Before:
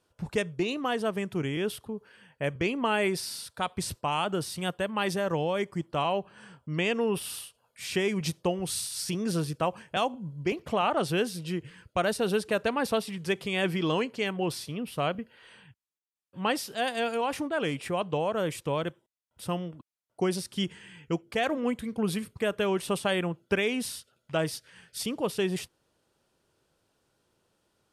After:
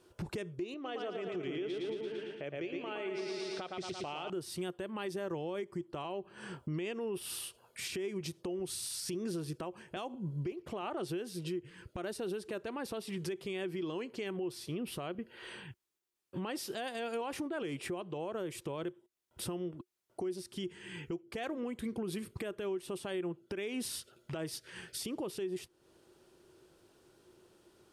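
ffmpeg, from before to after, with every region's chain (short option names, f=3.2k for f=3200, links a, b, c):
-filter_complex "[0:a]asettb=1/sr,asplit=3[a][b][c];[a]atrim=end=0.744[d];[b]atrim=start=0.74:end=4.3,asetpts=PTS-STARTPTS,afade=t=in:d=0.004:c=qsin,afade=t=out:st=3.556:d=0.004:c=qsin,highpass=200,equalizer=f=220:t=q:w=4:g=-9,equalizer=f=360:t=q:w=4:g=-5,equalizer=f=1k:t=q:w=4:g=-9,equalizer=f=1.7k:t=q:w=4:g=-5,equalizer=f=4.7k:t=q:w=4:g=-6,lowpass=f=5.5k:w=0.5412,lowpass=f=5.5k:w=1.3066,aecho=1:1:113|226|339|452|565|678|791|904:0.562|0.321|0.183|0.104|0.0594|0.0338|0.0193|0.011,atrim=end_sample=156996[e];[c]atrim=start=4.296[f];[d][e]acrossfade=d=0.004:c1=hsin:c2=qsin[g];[g][f]acrossfade=d=0.004:c1=qsin:c2=hsin,equalizer=f=360:w=5:g=14,acompressor=threshold=-40dB:ratio=4,alimiter=level_in=11.5dB:limit=-24dB:level=0:latency=1:release=103,volume=-11.5dB,volume=5.5dB"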